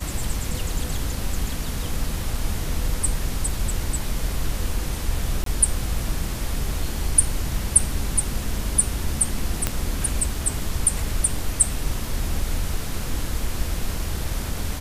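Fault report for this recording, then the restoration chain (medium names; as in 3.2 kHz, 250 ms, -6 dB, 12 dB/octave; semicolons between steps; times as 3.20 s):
5.44–5.46 s: dropout 23 ms
9.67 s: pop -5 dBFS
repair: de-click; interpolate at 5.44 s, 23 ms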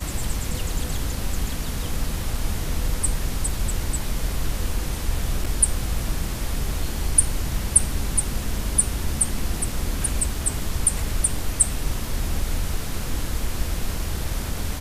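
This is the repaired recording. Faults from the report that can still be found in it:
nothing left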